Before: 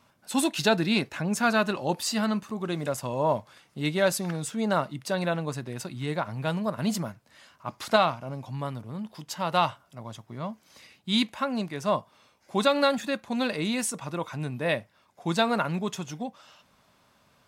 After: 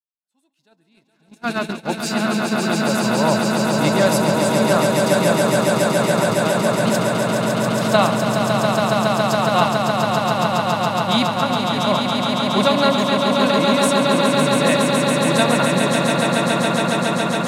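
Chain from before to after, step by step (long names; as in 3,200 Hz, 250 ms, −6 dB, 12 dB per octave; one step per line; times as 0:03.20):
fade in at the beginning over 2.46 s
echo that builds up and dies away 139 ms, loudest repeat 8, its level −5 dB
noise gate −26 dBFS, range −31 dB
level +4.5 dB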